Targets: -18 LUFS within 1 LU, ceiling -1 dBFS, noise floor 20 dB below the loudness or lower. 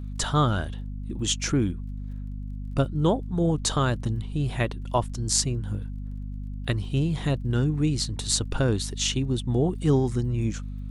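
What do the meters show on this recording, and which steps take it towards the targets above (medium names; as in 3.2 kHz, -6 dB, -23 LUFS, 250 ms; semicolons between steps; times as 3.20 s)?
tick rate 23 per s; hum 50 Hz; highest harmonic 250 Hz; hum level -31 dBFS; loudness -26.0 LUFS; peak level -5.0 dBFS; loudness target -18.0 LUFS
-> de-click; de-hum 50 Hz, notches 5; trim +8 dB; peak limiter -1 dBFS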